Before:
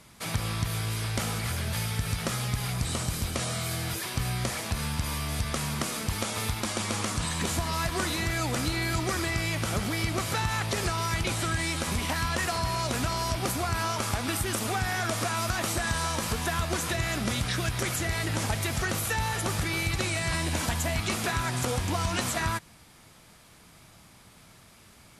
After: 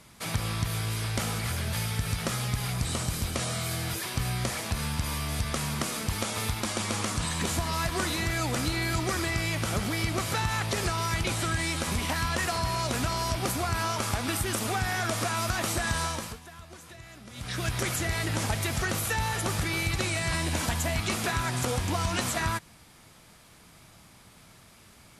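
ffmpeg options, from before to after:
-filter_complex "[0:a]asplit=3[s0][s1][s2];[s0]atrim=end=16.4,asetpts=PTS-STARTPTS,afade=t=out:st=16.02:d=0.38:silence=0.125893[s3];[s1]atrim=start=16.4:end=17.32,asetpts=PTS-STARTPTS,volume=0.126[s4];[s2]atrim=start=17.32,asetpts=PTS-STARTPTS,afade=t=in:d=0.38:silence=0.125893[s5];[s3][s4][s5]concat=n=3:v=0:a=1"

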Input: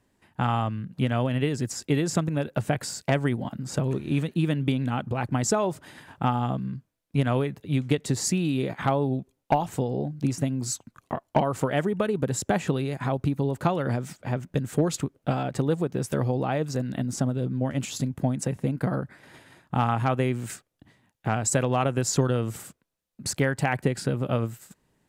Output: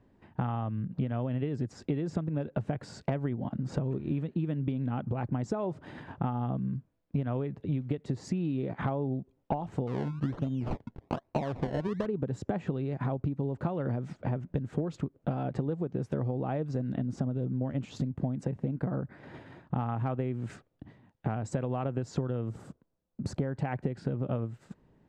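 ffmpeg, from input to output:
-filter_complex "[0:a]asettb=1/sr,asplit=3[s0][s1][s2];[s0]atrim=end=9.874[s3];[s1]atrim=start=9.87:end=12.06,asetpts=PTS-STARTPTS,afade=t=in:d=0.004:c=qsin,afade=t=out:st=2.186:d=0.004:c=qsin,acrusher=samples=25:mix=1:aa=0.000001:lfo=1:lforange=25:lforate=1.2[s4];[s2]atrim=start=12.056[s5];[s3][s4]acrossfade=d=0.004:c1=hsin:c2=qsin[s6];[s6][s5]acrossfade=d=0.004:c1=qsin:c2=hsin,asettb=1/sr,asplit=3[s7][s8][s9];[s7]atrim=end=22.494[s10];[s8]atrim=start=22.49:end=23.55,asetpts=PTS-STARTPTS,afade=t=in:d=0.004:c=qsin,afade=t=out:st=1.056:d=0.004:c=qsin,equalizer=f=2400:w=0.93:g=-8[s11];[s9]atrim=start=23.546[s12];[s10][s11]acrossfade=d=0.004:c1=hsin:c2=qsin[s13];[s13][s12]acrossfade=d=0.004:c1=qsin:c2=hsin,lowpass=4500,tiltshelf=f=1300:g=7,acompressor=threshold=0.0355:ratio=6"

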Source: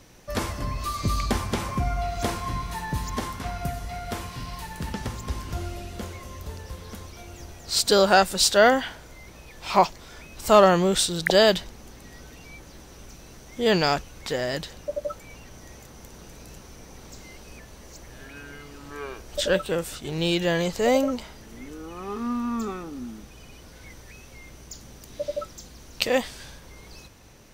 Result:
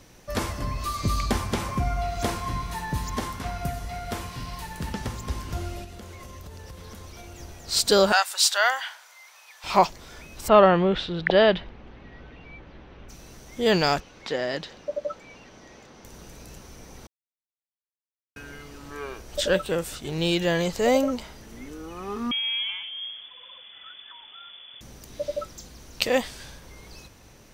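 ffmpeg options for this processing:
-filter_complex "[0:a]asettb=1/sr,asplit=3[s0][s1][s2];[s0]atrim=end=5.844[s3];[s1]atrim=start=5.84:end=7.38,asetpts=PTS-STARTPTS,afade=t=in:d=0.004:c=qsin,afade=t=out:st=1.536:d=0.004:c=qsin,acompressor=threshold=0.0141:ratio=10:attack=3.2:release=140:knee=1:detection=peak[s4];[s2]atrim=start=7.376[s5];[s3][s4]acrossfade=d=0.004:c1=hsin:c2=qsin[s6];[s6][s5]acrossfade=d=0.004:c1=qsin:c2=hsin,asettb=1/sr,asplit=3[s7][s8][s9];[s7]atrim=end=8.124[s10];[s8]atrim=start=8.12:end=9.64,asetpts=PTS-STARTPTS,afade=t=in:d=0.004:c=qsin,afade=t=out:st=1.516:d=0.004:c=qsin,highpass=f=850:w=0.5412,highpass=f=850:w=1.3066[s11];[s9]atrim=start=9.636[s12];[s10][s11]acrossfade=d=0.004:c1=hsin:c2=qsin[s13];[s13][s12]acrossfade=d=0.004:c1=qsin:c2=hsin,asplit=3[s14][s15][s16];[s14]afade=t=out:st=10.47:d=0.02[s17];[s15]lowpass=f=3200:w=0.5412,lowpass=f=3200:w=1.3066,afade=t=in:st=10.47:d=0.02,afade=t=out:st=13.08:d=0.02[s18];[s16]afade=t=in:st=13.08:d=0.02[s19];[s17][s18][s19]amix=inputs=3:normalize=0,asettb=1/sr,asplit=3[s20][s21][s22];[s20]atrim=end=14.004[s23];[s21]atrim=start=14:end=16.05,asetpts=PTS-STARTPTS,afade=t=in:d=0.004:c=qsin,afade=t=out:st=2.046:d=0.004:c=qsin,acrossover=split=160 5800:gain=0.224 1 0.0891[s24][s25][s26];[s24][s25][s26]amix=inputs=3:normalize=0[s27];[s22]atrim=start=16.046[s28];[s23][s27]acrossfade=d=0.004:c1=hsin:c2=qsin[s29];[s29][s28]acrossfade=d=0.004:c1=qsin:c2=hsin,asettb=1/sr,asplit=3[s30][s31][s32];[s30]atrim=end=22.314[s33];[s31]atrim=start=22.31:end=24.81,asetpts=PTS-STARTPTS,afade=t=in:d=0.004:c=qsin,afade=t=out:st=2.496:d=0.004:c=qsin,lowpass=f=3000:t=q:w=0.5098,lowpass=f=3000:t=q:w=0.6013,lowpass=f=3000:t=q:w=0.9,lowpass=f=3000:t=q:w=2.563,afreqshift=-3500[s34];[s32]atrim=start=24.806[s35];[s33][s34]acrossfade=d=0.004:c1=hsin:c2=qsin[s36];[s36][s35]acrossfade=d=0.004:c1=qsin:c2=hsin,asplit=3[s37][s38][s39];[s37]atrim=end=17.07,asetpts=PTS-STARTPTS,afade=t=out:st=17.066:d=0.004:c=hsin[s40];[s38]atrim=start=17.07:end=18.36,asetpts=PTS-STARTPTS,volume=0[s41];[s39]atrim=start=18.36,asetpts=PTS-STARTPTS,afade=t=in:d=0.004:c=hsin[s42];[s40][s41][s42]concat=n=3:v=0:a=1"

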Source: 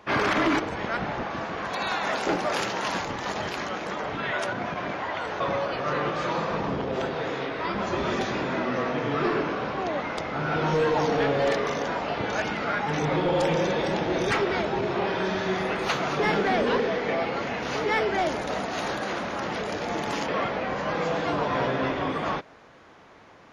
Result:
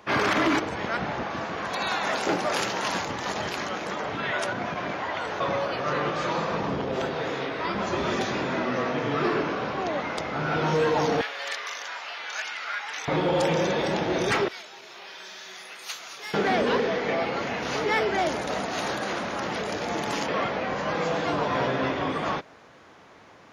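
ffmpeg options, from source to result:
-filter_complex "[0:a]asettb=1/sr,asplit=3[s0][s1][s2];[s0]atrim=end=11.214[s3];[s1]atrim=start=11.21:end=13.08,asetpts=PTS-STARTPTS,afade=t=in:d=0.004:c=qsin,afade=t=out:st=1.866:d=0.004:c=qsin,highpass=1500[s4];[s2]atrim=start=13.076[s5];[s3][s4]acrossfade=d=0.004:c1=hsin:c2=qsin[s6];[s6][s5]acrossfade=d=0.004:c1=qsin:c2=hsin,asettb=1/sr,asplit=3[s7][s8][s9];[s7]atrim=end=14.484[s10];[s8]atrim=start=14.48:end=16.34,asetpts=PTS-STARTPTS,afade=t=in:d=0.004:c=qsin,afade=t=out:st=1.856:d=0.004:c=qsin,aderivative[s11];[s9]atrim=start=16.336[s12];[s10][s11]acrossfade=d=0.004:c1=hsin:c2=qsin[s13];[s13][s12]acrossfade=d=0.004:c1=qsin:c2=hsin,highpass=57,highshelf=f=5200:g=5.5"

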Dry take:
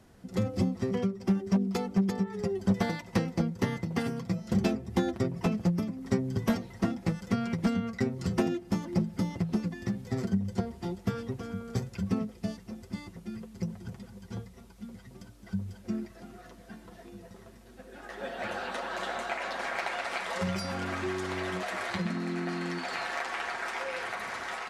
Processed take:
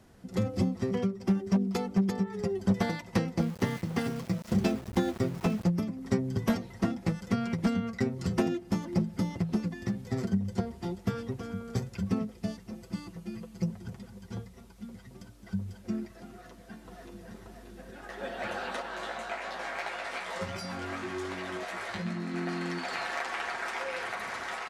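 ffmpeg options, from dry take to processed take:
-filter_complex "[0:a]asettb=1/sr,asplit=3[s0][s1][s2];[s0]atrim=end=3.394[s3];[s1]atrim=start=3.39:end=5.64,asetpts=PTS-STARTPTS,afade=t=in:d=0.004:c=qsin,afade=t=out:st=2.246:d=0.004:c=qsin,aeval=exprs='val(0)*gte(abs(val(0)),0.00841)':c=same[s4];[s2]atrim=start=5.636[s5];[s3][s4]acrossfade=d=0.004:c1=hsin:c2=qsin[s6];[s6][s5]acrossfade=d=0.004:c1=qsin:c2=hsin,asettb=1/sr,asplit=3[s7][s8][s9];[s7]atrim=end=12.734[s10];[s8]atrim=start=12.73:end=13.7,asetpts=PTS-STARTPTS,afade=t=in:d=0.004:c=qsin,afade=t=out:st=0.966:d=0.004:c=qsin,aecho=1:1:6.1:0.58,atrim=end_sample=42777[s11];[s9]atrim=start=13.696[s12];[s10][s11]acrossfade=d=0.004:c1=hsin:c2=qsin[s13];[s13][s12]acrossfade=d=0.004:c1=qsin:c2=hsin,asplit=2[s14][s15];[s15]afade=t=in:st=16.27:d=0.01,afade=t=out:st=17.33:d=0.01,aecho=0:1:580|1160|1740|2320|2900|3480|4060:0.668344|0.334172|0.167086|0.083543|0.0417715|0.0208857|0.0104429[s16];[s14][s16]amix=inputs=2:normalize=0,asettb=1/sr,asplit=3[s17][s18][s19];[s17]atrim=end=18.824[s20];[s18]atrim=start=18.82:end=22.34,asetpts=PTS-STARTPTS,afade=t=in:d=0.004:c=qsin,afade=t=out:st=3.516:d=0.004:c=qsin,flanger=delay=17:depth=2.1:speed=2.7[s21];[s19]atrim=start=22.336[s22];[s20][s21]acrossfade=d=0.004:c1=hsin:c2=qsin[s23];[s23][s22]acrossfade=d=0.004:c1=qsin:c2=hsin"

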